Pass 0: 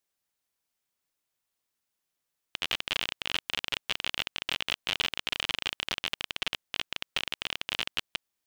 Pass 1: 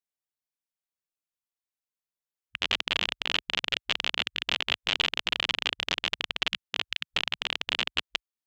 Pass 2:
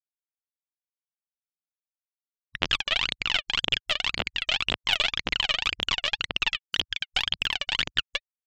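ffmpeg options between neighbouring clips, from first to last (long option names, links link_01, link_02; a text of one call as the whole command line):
ffmpeg -i in.wav -af "afwtdn=0.01,volume=3.5dB" out.wav
ffmpeg -i in.wav -af "aphaser=in_gain=1:out_gain=1:delay=1.8:decay=0.79:speed=1.9:type=triangular,afftfilt=real='re*gte(hypot(re,im),0.00447)':imag='im*gte(hypot(re,im),0.00447)':win_size=1024:overlap=0.75,volume=-1.5dB" out.wav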